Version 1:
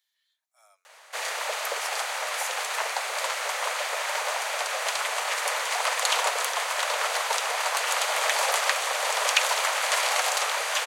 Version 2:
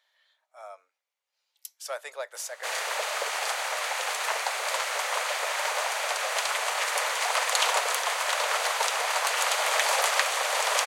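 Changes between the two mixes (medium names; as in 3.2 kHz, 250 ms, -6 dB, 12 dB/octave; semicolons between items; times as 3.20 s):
speech: remove differentiator; background: entry +1.50 s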